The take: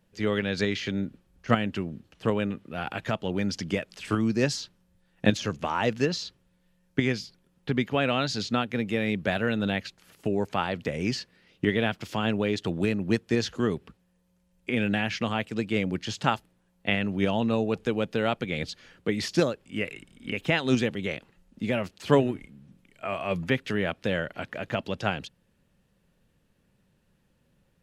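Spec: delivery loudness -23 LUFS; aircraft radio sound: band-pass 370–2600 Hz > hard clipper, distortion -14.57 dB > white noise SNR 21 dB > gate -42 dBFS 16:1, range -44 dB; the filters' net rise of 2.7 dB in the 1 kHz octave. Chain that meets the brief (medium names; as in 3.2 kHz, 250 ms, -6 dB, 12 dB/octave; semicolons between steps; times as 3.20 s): band-pass 370–2600 Hz; peaking EQ 1 kHz +4 dB; hard clipper -18 dBFS; white noise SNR 21 dB; gate -42 dBFS 16:1, range -44 dB; trim +8.5 dB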